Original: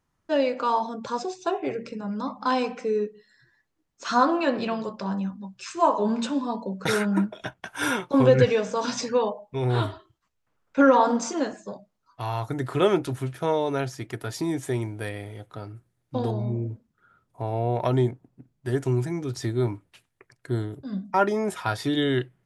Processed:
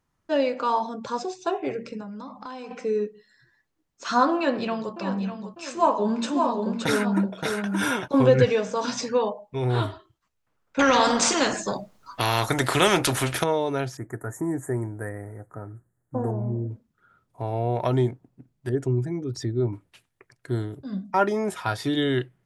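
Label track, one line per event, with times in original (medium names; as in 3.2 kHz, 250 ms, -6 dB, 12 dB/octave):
2.020000	2.710000	compression 5:1, threshold -35 dBFS
4.360000	4.940000	echo throw 600 ms, feedback 50%, level -10 dB
5.660000	8.080000	delay 572 ms -4 dB
10.790000	13.440000	spectrum-flattening compressor 2:1
13.970000	16.710000	elliptic band-stop 1.8–7.1 kHz
18.690000	19.730000	resonances exaggerated exponent 1.5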